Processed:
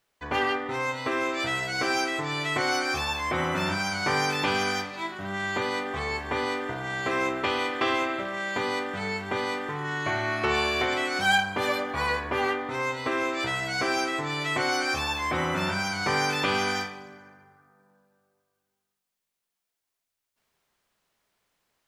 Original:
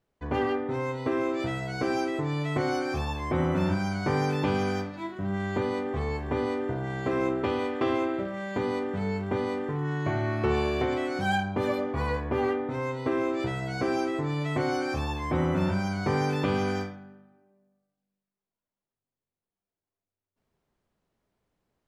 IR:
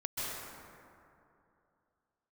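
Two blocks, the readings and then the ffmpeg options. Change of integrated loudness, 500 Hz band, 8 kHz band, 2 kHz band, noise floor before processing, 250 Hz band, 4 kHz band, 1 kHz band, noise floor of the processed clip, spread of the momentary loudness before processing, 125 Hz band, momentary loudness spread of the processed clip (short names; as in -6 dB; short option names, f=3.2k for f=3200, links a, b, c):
+2.0 dB, -2.0 dB, +11.5 dB, +8.5 dB, under -85 dBFS, -4.5 dB, +11.0 dB, +4.0 dB, -84 dBFS, 5 LU, -7.0 dB, 6 LU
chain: -filter_complex "[0:a]tiltshelf=f=720:g=-9.5,asplit=2[a][b];[1:a]atrim=start_sample=2205[c];[b][c]afir=irnorm=-1:irlink=0,volume=-20dB[d];[a][d]amix=inputs=2:normalize=0,volume=1.5dB"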